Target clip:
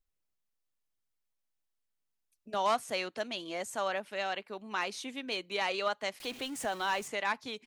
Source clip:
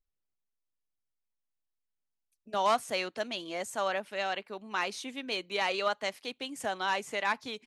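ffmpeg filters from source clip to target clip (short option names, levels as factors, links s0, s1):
-filter_complex "[0:a]asettb=1/sr,asplit=3[s0][s1][s2];[s0]atrim=end=6.204[s3];[s1]atrim=start=6.2:end=7.08,asetpts=PTS-STARTPTS,afade=t=in:d=0.004:c=qsin,afade=t=out:st=0.876:d=0.004:c=qsin,aeval=exprs='val(0)+0.5*0.00794*sgn(val(0))':c=same[s4];[s2]atrim=start=7.076[s5];[s3][s4]acrossfade=d=0.004:c1=hsin:c2=qsin[s6];[s6][s5]acrossfade=d=0.004:c1=qsin:c2=hsin,asplit=2[s7][s8];[s8]acompressor=threshold=0.00631:ratio=6,volume=0.75[s9];[s7][s9]amix=inputs=2:normalize=0,volume=0.708"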